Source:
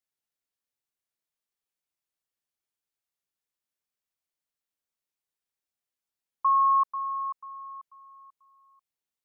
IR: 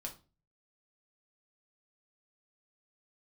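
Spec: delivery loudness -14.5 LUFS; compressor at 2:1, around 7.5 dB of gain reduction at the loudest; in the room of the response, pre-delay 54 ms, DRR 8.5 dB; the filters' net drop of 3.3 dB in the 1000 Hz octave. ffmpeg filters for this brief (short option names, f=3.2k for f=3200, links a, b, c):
-filter_complex "[0:a]equalizer=f=1k:t=o:g=-3.5,acompressor=threshold=-37dB:ratio=2,asplit=2[a][b];[1:a]atrim=start_sample=2205,adelay=54[c];[b][c]afir=irnorm=-1:irlink=0,volume=-6dB[d];[a][d]amix=inputs=2:normalize=0,volume=22dB"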